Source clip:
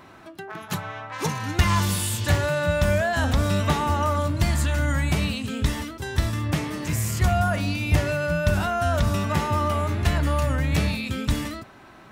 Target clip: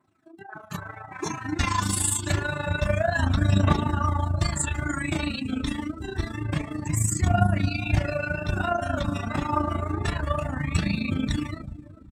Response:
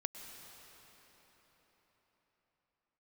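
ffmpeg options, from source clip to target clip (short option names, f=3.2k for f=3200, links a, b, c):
-filter_complex "[0:a]asplit=2[a][b];[1:a]atrim=start_sample=2205[c];[b][c]afir=irnorm=-1:irlink=0,volume=-8.5dB[d];[a][d]amix=inputs=2:normalize=0,flanger=delay=19:depth=4:speed=2,highpass=68,asplit=2[e][f];[f]adelay=389,lowpass=f=1.8k:p=1,volume=-11dB,asplit=2[g][h];[h]adelay=389,lowpass=f=1.8k:p=1,volume=0.53,asplit=2[i][j];[j]adelay=389,lowpass=f=1.8k:p=1,volume=0.53,asplit=2[k][l];[l]adelay=389,lowpass=f=1.8k:p=1,volume=0.53,asplit=2[m][n];[n]adelay=389,lowpass=f=1.8k:p=1,volume=0.53,asplit=2[o][p];[p]adelay=389,lowpass=f=1.8k:p=1,volume=0.53[q];[e][g][i][k][m][o][q]amix=inputs=7:normalize=0,afftdn=nr=21:nf=-35,equalizer=f=315:t=o:w=0.33:g=6,equalizer=f=500:t=o:w=0.33:g=-9,equalizer=f=8k:t=o:w=0.33:g=11,tremolo=f=27:d=0.71,aphaser=in_gain=1:out_gain=1:delay=4.1:decay=0.47:speed=0.27:type=triangular,bandreject=f=3k:w=20,adynamicequalizer=threshold=0.01:dfrequency=2700:dqfactor=0.7:tfrequency=2700:tqfactor=0.7:attack=5:release=100:ratio=0.375:range=2:mode=boostabove:tftype=highshelf"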